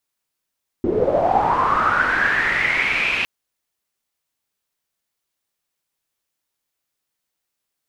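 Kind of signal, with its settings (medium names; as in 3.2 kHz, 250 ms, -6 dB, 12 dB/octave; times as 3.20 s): swept filtered noise white, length 2.41 s lowpass, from 310 Hz, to 2.6 kHz, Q 8, linear, gain ramp -11 dB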